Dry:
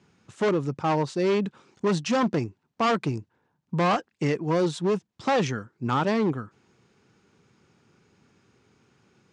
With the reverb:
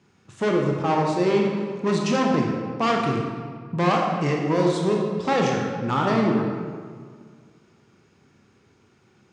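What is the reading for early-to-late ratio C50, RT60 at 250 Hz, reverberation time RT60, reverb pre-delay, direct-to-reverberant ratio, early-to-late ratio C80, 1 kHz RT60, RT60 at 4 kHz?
1.5 dB, 2.1 s, 1.8 s, 21 ms, -0.5 dB, 3.0 dB, 1.8 s, 1.2 s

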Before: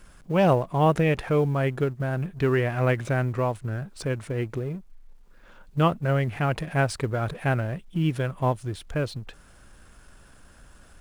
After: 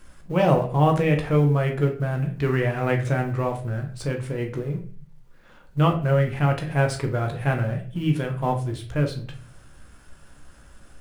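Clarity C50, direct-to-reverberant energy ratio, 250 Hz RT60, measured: 10.0 dB, 2.5 dB, 0.65 s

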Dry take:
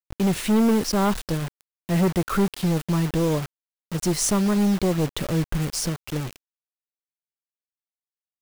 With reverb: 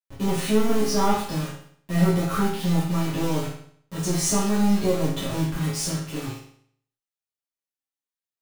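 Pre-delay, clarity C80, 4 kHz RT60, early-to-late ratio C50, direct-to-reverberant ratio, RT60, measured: 7 ms, 6.5 dB, 0.60 s, 2.5 dB, -10.0 dB, 0.60 s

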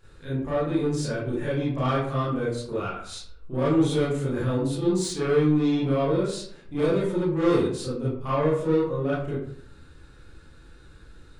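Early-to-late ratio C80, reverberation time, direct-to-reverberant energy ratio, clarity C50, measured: 5.5 dB, 0.60 s, -10.0 dB, 0.0 dB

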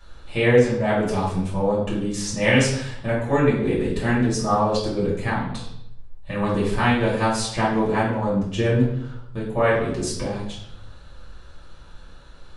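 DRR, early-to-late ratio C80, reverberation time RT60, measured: -8.5 dB, 7.0 dB, 0.75 s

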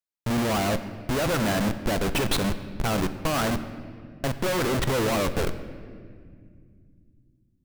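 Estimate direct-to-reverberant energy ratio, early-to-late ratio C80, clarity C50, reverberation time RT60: 10.0 dB, 13.0 dB, 12.0 dB, 2.2 s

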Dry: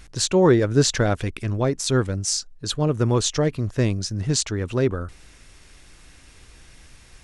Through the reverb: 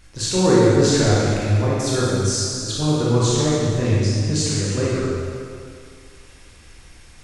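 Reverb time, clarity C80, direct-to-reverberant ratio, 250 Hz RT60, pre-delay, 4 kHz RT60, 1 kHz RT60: 2.3 s, -1.5 dB, -8.0 dB, 2.1 s, 20 ms, 1.9 s, 2.3 s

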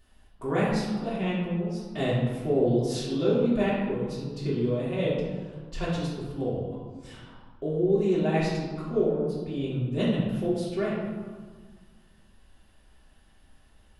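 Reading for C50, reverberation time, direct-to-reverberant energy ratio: 0.0 dB, 1.6 s, -9.0 dB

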